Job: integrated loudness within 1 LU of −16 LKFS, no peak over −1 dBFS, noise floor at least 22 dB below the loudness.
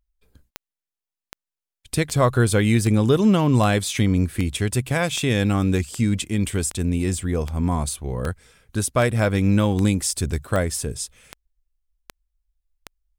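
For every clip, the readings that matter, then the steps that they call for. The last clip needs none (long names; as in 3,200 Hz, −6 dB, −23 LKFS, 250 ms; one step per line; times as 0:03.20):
number of clicks 17; integrated loudness −21.5 LKFS; sample peak −5.5 dBFS; target loudness −16.0 LKFS
→ click removal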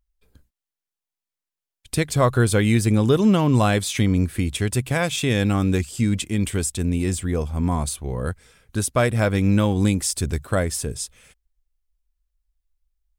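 number of clicks 0; integrated loudness −21.5 LKFS; sample peak −5.5 dBFS; target loudness −16.0 LKFS
→ level +5.5 dB
brickwall limiter −1 dBFS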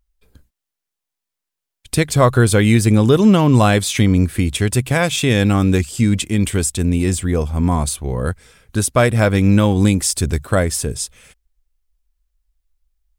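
integrated loudness −16.0 LKFS; sample peak −1.0 dBFS; background noise floor −83 dBFS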